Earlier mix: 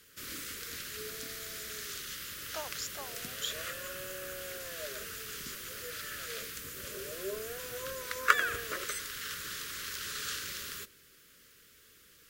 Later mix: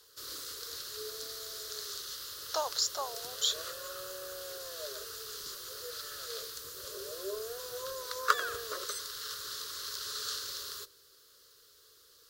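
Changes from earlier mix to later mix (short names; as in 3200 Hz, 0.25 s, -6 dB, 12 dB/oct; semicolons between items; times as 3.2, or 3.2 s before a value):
background -8.0 dB; master: add EQ curve 130 Hz 0 dB, 200 Hz -14 dB, 430 Hz +10 dB, 670 Hz +7 dB, 1100 Hz +11 dB, 2300 Hz -7 dB, 4200 Hz +14 dB, 7600 Hz +6 dB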